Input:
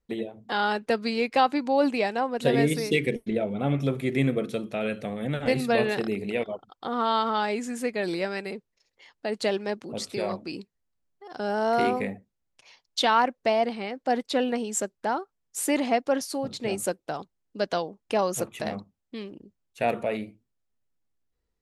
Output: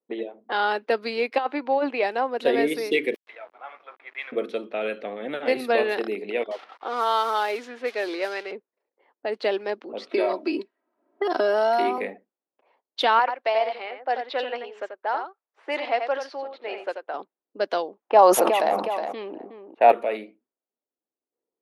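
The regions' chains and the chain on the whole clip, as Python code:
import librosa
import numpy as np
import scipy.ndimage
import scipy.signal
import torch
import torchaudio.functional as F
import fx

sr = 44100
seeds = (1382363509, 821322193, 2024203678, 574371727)

y = fx.chain(x, sr, fx.bandpass_edges(low_hz=140.0, high_hz=3100.0),
    fx.low_shelf(hz=230.0, db=-9.0),
    fx.over_compress(threshold_db=-23.0, ratio=-0.5), at=(1.38, 2.03))
y = fx.chain(y, sr, fx.highpass(hz=980.0, slope=24),
    fx.quant_dither(seeds[0], bits=8, dither='none'), at=(3.14, 4.32))
y = fx.chain(y, sr, fx.crossing_spikes(level_db=-24.5),
    fx.bandpass_edges(low_hz=330.0, high_hz=7700.0), at=(6.51, 8.52))
y = fx.chain(y, sr, fx.comb(ms=3.1, depth=0.78),
    fx.band_squash(depth_pct=100), at=(10.11, 11.98))
y = fx.chain(y, sr, fx.bandpass_edges(low_hz=600.0, high_hz=5300.0),
    fx.echo_single(ms=87, db=-7.0), at=(13.19, 17.14))
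y = fx.chain(y, sr, fx.peak_eq(hz=830.0, db=11.5, octaves=0.94),
    fx.echo_feedback(ms=366, feedback_pct=24, wet_db=-20.0),
    fx.sustainer(db_per_s=24.0), at=(18.02, 19.92))
y = fx.env_lowpass(y, sr, base_hz=720.0, full_db=-23.5)
y = scipy.signal.sosfilt(scipy.signal.butter(4, 300.0, 'highpass', fs=sr, output='sos'), y)
y = fx.peak_eq(y, sr, hz=7500.0, db=-14.5, octaves=0.8)
y = F.gain(torch.from_numpy(y), 2.5).numpy()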